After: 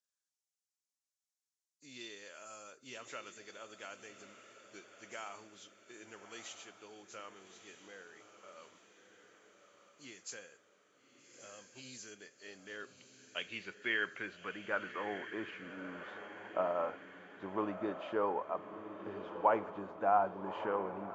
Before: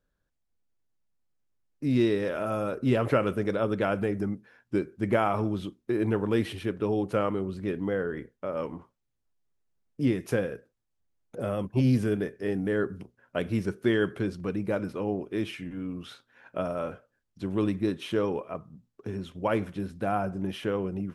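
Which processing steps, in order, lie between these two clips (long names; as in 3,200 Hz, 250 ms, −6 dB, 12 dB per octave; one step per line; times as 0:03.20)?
hearing-aid frequency compression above 3,100 Hz 1.5 to 1
band-pass filter sweep 6,600 Hz → 910 Hz, 0:11.98–0:15.65
feedback delay with all-pass diffusion 1,245 ms, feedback 49%, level −9.5 dB
level +4.5 dB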